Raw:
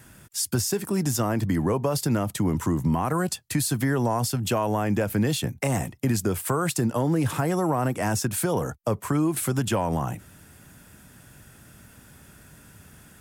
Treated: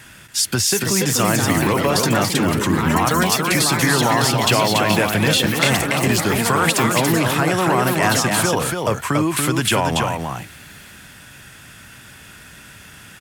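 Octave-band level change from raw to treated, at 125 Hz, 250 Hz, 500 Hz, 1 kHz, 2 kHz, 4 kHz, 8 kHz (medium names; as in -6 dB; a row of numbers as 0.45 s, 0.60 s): +4.5 dB, +5.5 dB, +7.0 dB, +10.0 dB, +15.0 dB, +15.5 dB, +10.0 dB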